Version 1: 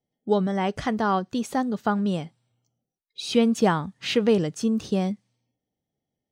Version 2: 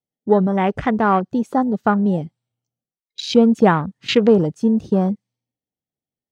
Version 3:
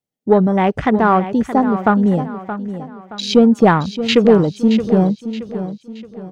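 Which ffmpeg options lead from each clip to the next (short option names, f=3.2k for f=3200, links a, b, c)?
-af "afwtdn=0.0224,volume=7dB"
-filter_complex "[0:a]asoftclip=type=tanh:threshold=-3.5dB,asplit=2[a][b];[b]aecho=0:1:623|1246|1869|2492:0.266|0.106|0.0426|0.017[c];[a][c]amix=inputs=2:normalize=0,volume=3.5dB"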